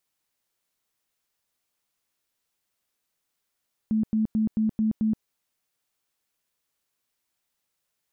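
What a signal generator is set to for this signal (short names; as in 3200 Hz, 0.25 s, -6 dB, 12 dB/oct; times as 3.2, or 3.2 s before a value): tone bursts 218 Hz, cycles 27, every 0.22 s, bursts 6, -20 dBFS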